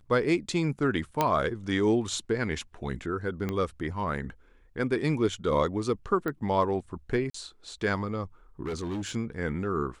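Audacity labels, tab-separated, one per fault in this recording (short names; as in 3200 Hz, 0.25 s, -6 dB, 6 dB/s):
1.210000	1.210000	pop -10 dBFS
3.490000	3.490000	pop -18 dBFS
6.280000	6.280000	pop -19 dBFS
7.300000	7.340000	gap 44 ms
8.660000	9.160000	clipped -29 dBFS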